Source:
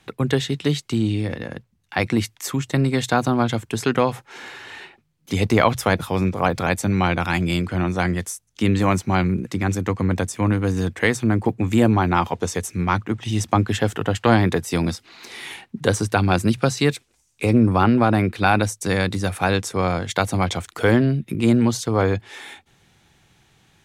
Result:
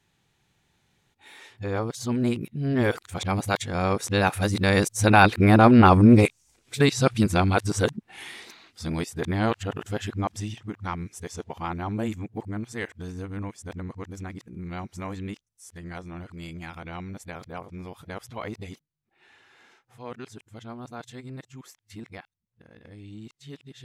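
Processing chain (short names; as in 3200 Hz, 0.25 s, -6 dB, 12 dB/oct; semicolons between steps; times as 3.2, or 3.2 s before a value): whole clip reversed; Doppler pass-by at 5.65, 11 m/s, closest 12 m; gain +2.5 dB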